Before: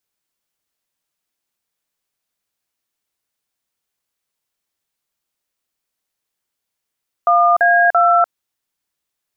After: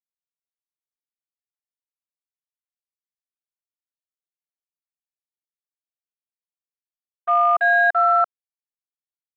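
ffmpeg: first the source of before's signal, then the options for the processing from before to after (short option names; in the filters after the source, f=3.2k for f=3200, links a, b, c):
-f lavfi -i "aevalsrc='0.251*clip(min(mod(t,0.338),0.296-mod(t,0.338))/0.002,0,1)*(eq(floor(t/0.338),0)*(sin(2*PI*697*mod(t,0.338))+sin(2*PI*1209*mod(t,0.338)))+eq(floor(t/0.338),1)*(sin(2*PI*697*mod(t,0.338))+sin(2*PI*1633*mod(t,0.338)))+eq(floor(t/0.338),2)*(sin(2*PI*697*mod(t,0.338))+sin(2*PI*1336*mod(t,0.338))))':d=1.014:s=44100"
-filter_complex "[0:a]agate=range=-33dB:threshold=-9dB:ratio=3:detection=peak,afwtdn=0.0447,acrossover=split=730|890[a][b][c];[a]alimiter=level_in=4.5dB:limit=-24dB:level=0:latency=1:release=223,volume=-4.5dB[d];[d][b][c]amix=inputs=3:normalize=0"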